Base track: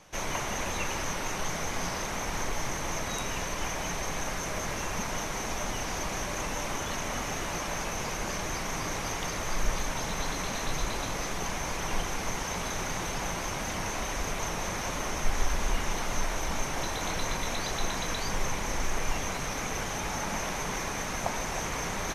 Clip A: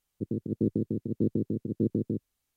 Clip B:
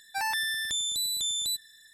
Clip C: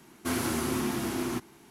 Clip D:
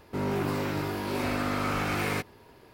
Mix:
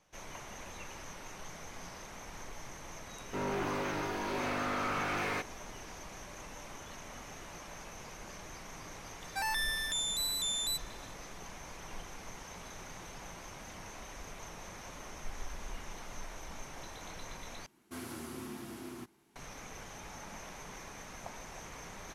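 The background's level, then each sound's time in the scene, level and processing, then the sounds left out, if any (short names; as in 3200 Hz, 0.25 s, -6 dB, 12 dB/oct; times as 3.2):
base track -14.5 dB
3.2 add D -8 dB + overdrive pedal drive 16 dB, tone 2200 Hz, clips at -17.5 dBFS
9.21 add B -4.5 dB
17.66 replace with C -14 dB
not used: A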